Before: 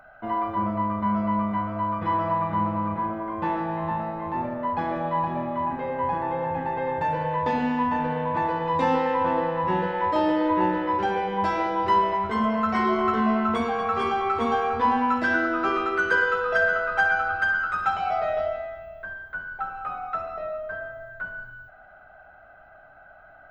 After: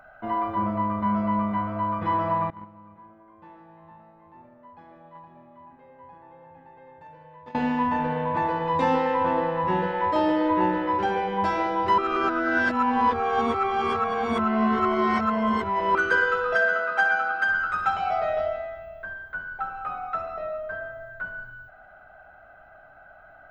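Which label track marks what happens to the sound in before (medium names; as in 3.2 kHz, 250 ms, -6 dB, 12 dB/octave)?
2.500000	7.550000	gate -21 dBFS, range -22 dB
11.980000	15.950000	reverse
16.550000	17.490000	Chebyshev high-pass 200 Hz, order 3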